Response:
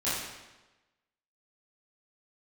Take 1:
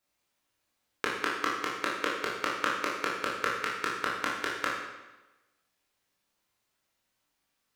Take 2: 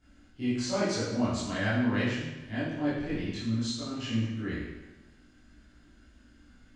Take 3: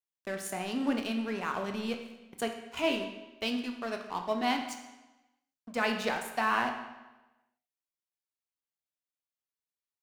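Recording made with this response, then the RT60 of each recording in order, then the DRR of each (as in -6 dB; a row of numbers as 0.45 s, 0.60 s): 2; 1.1 s, 1.1 s, 1.1 s; -5.0 dB, -12.5 dB, 4.0 dB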